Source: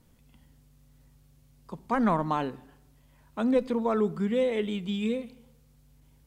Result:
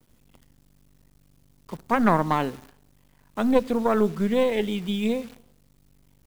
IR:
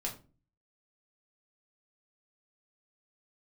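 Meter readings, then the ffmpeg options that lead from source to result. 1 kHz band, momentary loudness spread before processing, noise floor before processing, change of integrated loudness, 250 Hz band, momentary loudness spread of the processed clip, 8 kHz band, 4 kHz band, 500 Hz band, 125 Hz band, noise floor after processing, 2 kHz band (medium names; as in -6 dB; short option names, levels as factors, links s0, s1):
+5.0 dB, 15 LU, -61 dBFS, +4.0 dB, +4.0 dB, 16 LU, no reading, +5.0 dB, +4.0 dB, +4.5 dB, -60 dBFS, +6.5 dB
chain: -af "aeval=exprs='0.251*(cos(1*acos(clip(val(0)/0.251,-1,1)))-cos(1*PI/2))+0.1*(cos(2*acos(clip(val(0)/0.251,-1,1)))-cos(2*PI/2))+0.00178*(cos(3*acos(clip(val(0)/0.251,-1,1)))-cos(3*PI/2))':c=same,acrusher=bits=9:dc=4:mix=0:aa=0.000001,volume=1.5"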